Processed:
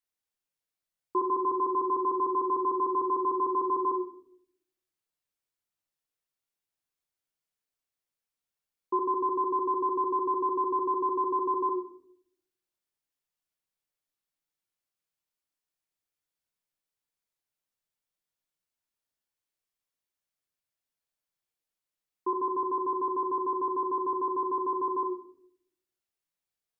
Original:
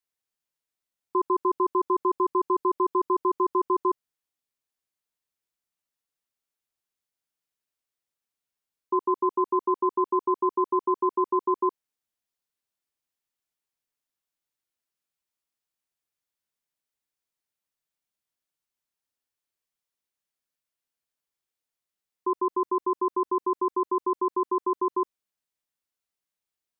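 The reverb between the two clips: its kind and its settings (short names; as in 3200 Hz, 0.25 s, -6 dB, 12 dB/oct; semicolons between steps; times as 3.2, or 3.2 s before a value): shoebox room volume 120 m³, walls mixed, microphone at 0.54 m; gain -3.5 dB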